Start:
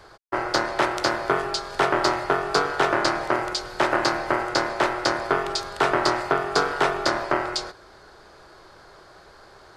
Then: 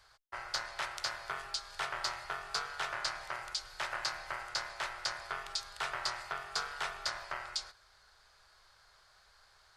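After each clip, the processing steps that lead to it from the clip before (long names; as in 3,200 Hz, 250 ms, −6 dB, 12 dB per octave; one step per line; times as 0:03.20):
guitar amp tone stack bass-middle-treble 10-0-10
level −7.5 dB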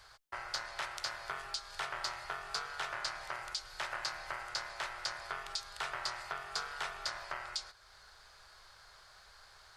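downward compressor 1.5 to 1, threshold −54 dBFS, peak gain reduction 8.5 dB
level +5.5 dB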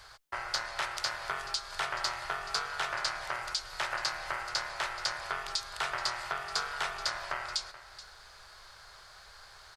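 single-tap delay 429 ms −16 dB
level +5.5 dB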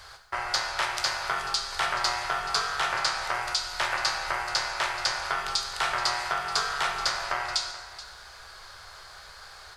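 dense smooth reverb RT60 0.99 s, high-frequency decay 0.9×, DRR 3.5 dB
level +5 dB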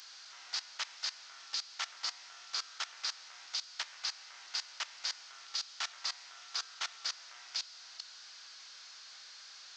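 linear delta modulator 32 kbit/s, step −24 dBFS
first difference
output level in coarse steps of 18 dB
level +1.5 dB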